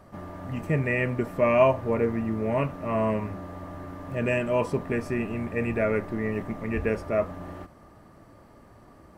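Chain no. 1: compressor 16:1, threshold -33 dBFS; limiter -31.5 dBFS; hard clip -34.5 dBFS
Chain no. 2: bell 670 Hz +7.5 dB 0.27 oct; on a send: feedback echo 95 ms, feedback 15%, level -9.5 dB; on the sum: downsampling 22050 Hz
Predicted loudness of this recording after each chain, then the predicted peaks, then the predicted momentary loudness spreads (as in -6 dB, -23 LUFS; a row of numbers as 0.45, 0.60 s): -41.5, -23.5 LUFS; -34.5, -3.0 dBFS; 13, 18 LU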